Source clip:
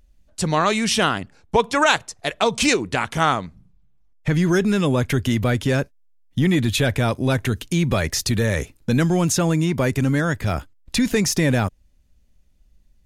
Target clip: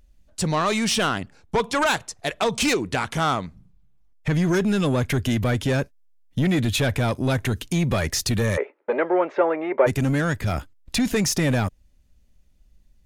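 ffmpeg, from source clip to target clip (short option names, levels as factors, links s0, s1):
-filter_complex "[0:a]asoftclip=type=tanh:threshold=0.178,asplit=3[s0][s1][s2];[s0]afade=t=out:st=8.56:d=0.02[s3];[s1]highpass=f=370:w=0.5412,highpass=f=370:w=1.3066,equalizer=f=400:t=q:w=4:g=10,equalizer=f=570:t=q:w=4:g=10,equalizer=f=880:t=q:w=4:g=7,equalizer=f=1300:t=q:w=4:g=4,equalizer=f=2100:t=q:w=4:g=5,lowpass=f=2200:w=0.5412,lowpass=f=2200:w=1.3066,afade=t=in:st=8.56:d=0.02,afade=t=out:st=9.86:d=0.02[s4];[s2]afade=t=in:st=9.86:d=0.02[s5];[s3][s4][s5]amix=inputs=3:normalize=0"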